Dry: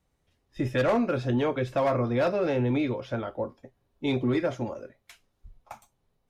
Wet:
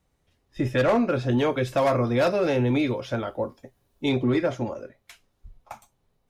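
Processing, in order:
0:01.31–0:04.09: high-shelf EQ 4,800 Hz +10.5 dB
level +3 dB

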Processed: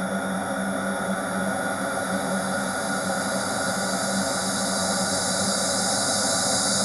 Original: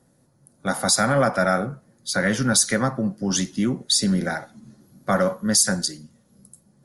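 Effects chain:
extreme stretch with random phases 34×, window 0.50 s, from 0:00.65
level −1 dB

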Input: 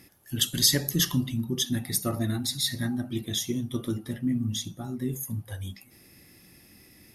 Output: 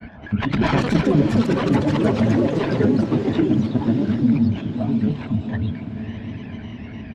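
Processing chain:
phase distortion by the signal itself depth 0.74 ms
low-pass filter 2,800 Hz 24 dB per octave
parametric band 64 Hz +9 dB 0.7 octaves
comb filter 1.2 ms, depth 59%
upward compression, threshold −42 dBFS
granular cloud, spray 15 ms, pitch spread up and down by 3 semitones
hollow resonant body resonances 230/420/640/1,000 Hz, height 10 dB, ringing for 45 ms
delay with pitch and tempo change per echo 212 ms, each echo +5 semitones, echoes 3
feedback delay with all-pass diffusion 567 ms, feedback 49%, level −11 dB
multiband upward and downward compressor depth 40%
level +3.5 dB

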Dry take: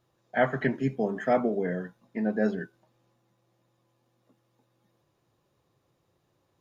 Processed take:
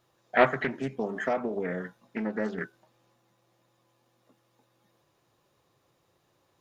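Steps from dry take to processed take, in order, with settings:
0:00.47–0:02.58: downward compressor 3 to 1, threshold −30 dBFS, peak gain reduction 9 dB
low-shelf EQ 410 Hz −7.5 dB
highs frequency-modulated by the lows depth 0.28 ms
level +5.5 dB

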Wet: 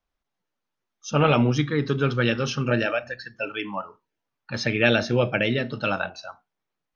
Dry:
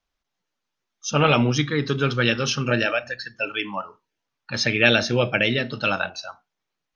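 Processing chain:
high-shelf EQ 2,200 Hz −8.5 dB

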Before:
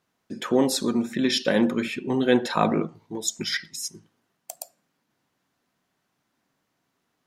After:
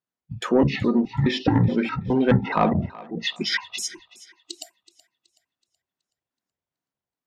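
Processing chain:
pitch shifter gated in a rhythm −11.5 semitones, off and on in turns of 210 ms
noise reduction from a noise print of the clip's start 21 dB
treble cut that deepens with the level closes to 2,400 Hz, closed at −20.5 dBFS
automatic gain control gain up to 3 dB
soft clipping −9 dBFS, distortion −19 dB
on a send: feedback echo with a high-pass in the loop 375 ms, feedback 37%, high-pass 450 Hz, level −18.5 dB
on the sum: level +1.5 dB

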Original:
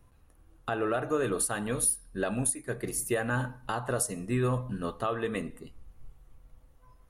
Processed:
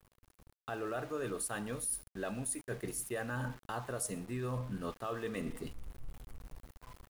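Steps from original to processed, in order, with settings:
reversed playback
downward compressor 5 to 1, threshold −42 dBFS, peak gain reduction 17 dB
reversed playback
centre clipping without the shift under −54.5 dBFS
automatic gain control gain up to 10.5 dB
level −5.5 dB

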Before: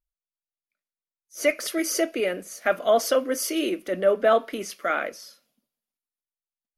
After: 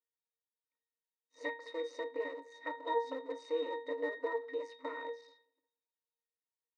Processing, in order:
sub-harmonics by changed cycles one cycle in 2, muted
dynamic equaliser 1,400 Hz, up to +5 dB, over −43 dBFS, Q 4
downward compressor 6 to 1, threshold −31 dBFS, peak gain reduction 14.5 dB
resonances in every octave A#, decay 0.3 s
brick-wall band-pass 260–9,300 Hz
level +16.5 dB

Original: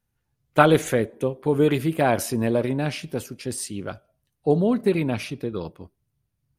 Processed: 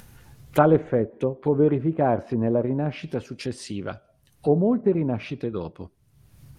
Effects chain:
treble cut that deepens with the level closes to 980 Hz, closed at −20 dBFS
upward compression, threshold −27 dBFS

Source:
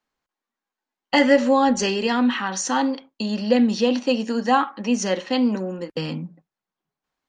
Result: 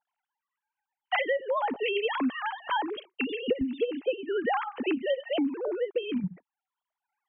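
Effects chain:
three sine waves on the formant tracks
parametric band 330 Hz −10 dB 0.52 octaves, from 0:03.61 62 Hz, from 0:06.20 230 Hz
downward compressor 10 to 1, threshold −29 dBFS, peak gain reduction 20.5 dB
level +4 dB

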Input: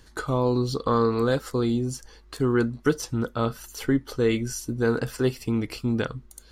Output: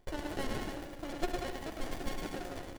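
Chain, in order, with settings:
high-pass filter 48 Hz
low-shelf EQ 440 Hz −10.5 dB
in parallel at −2 dB: brickwall limiter −23.5 dBFS, peak gain reduction 9.5 dB
on the sum: stiff-string resonator 150 Hz, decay 0.27 s, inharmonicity 0.008
bouncing-ball delay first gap 250 ms, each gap 0.75×, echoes 5
on a send at −9.5 dB: convolution reverb RT60 0.50 s, pre-delay 110 ms
on the sum: wrong playback speed 33 rpm record played at 78 rpm
windowed peak hold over 33 samples
level +2 dB

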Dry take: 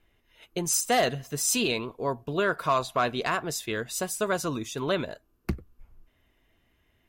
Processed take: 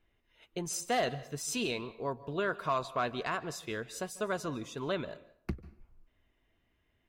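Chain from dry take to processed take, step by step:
high-shelf EQ 8,100 Hz −11.5 dB
on a send: convolution reverb RT60 0.55 s, pre-delay 138 ms, DRR 18 dB
on the sum: level −6.5 dB

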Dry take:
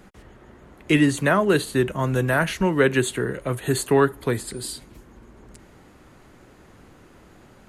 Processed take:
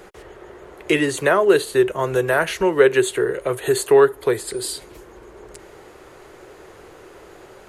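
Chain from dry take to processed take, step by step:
low shelf with overshoot 310 Hz −7.5 dB, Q 3
in parallel at +2 dB: downward compressor, threshold −33 dBFS, peak gain reduction 21.5 dB

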